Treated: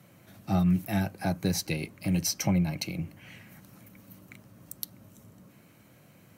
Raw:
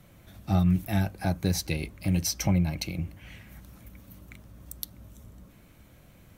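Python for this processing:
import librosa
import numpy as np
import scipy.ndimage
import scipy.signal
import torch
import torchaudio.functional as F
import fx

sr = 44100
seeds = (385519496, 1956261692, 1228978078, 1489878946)

y = scipy.signal.sosfilt(scipy.signal.butter(4, 110.0, 'highpass', fs=sr, output='sos'), x)
y = fx.notch(y, sr, hz=3500.0, q=11.0)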